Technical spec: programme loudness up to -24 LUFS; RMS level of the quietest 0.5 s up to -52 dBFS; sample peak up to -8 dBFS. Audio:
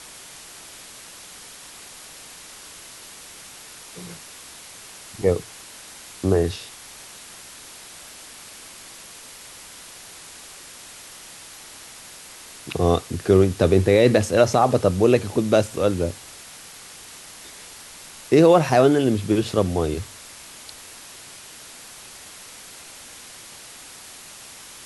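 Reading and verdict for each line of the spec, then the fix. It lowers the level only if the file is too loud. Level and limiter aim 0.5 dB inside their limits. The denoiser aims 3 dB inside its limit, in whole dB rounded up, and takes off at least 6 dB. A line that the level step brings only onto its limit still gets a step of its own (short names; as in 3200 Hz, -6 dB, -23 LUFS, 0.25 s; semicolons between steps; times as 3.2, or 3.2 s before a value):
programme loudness -19.5 LUFS: fail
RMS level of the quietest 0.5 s -42 dBFS: fail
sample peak -4.5 dBFS: fail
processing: denoiser 8 dB, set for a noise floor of -42 dBFS; gain -5 dB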